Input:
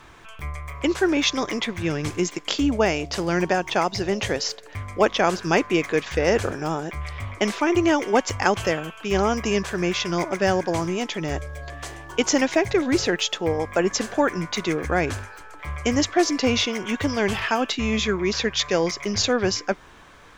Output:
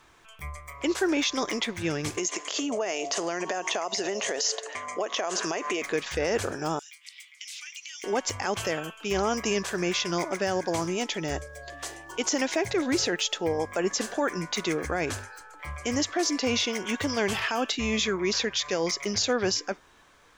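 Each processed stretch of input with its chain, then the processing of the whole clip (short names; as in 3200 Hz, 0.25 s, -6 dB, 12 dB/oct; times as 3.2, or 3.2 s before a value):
2.17–5.82 transient shaper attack +2 dB, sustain +6 dB + speaker cabinet 240–9900 Hz, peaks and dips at 420 Hz +5 dB, 660 Hz +9 dB, 1100 Hz +7 dB, 1900 Hz +5 dB, 2900 Hz +5 dB, 6600 Hz +10 dB + compressor 10:1, threshold -22 dBFS
6.79–8.04 inverse Chebyshev high-pass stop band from 390 Hz, stop band 80 dB + compressor 12:1, threshold -35 dBFS
whole clip: spectral noise reduction 7 dB; tone controls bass -4 dB, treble +5 dB; limiter -14 dBFS; gain -2.5 dB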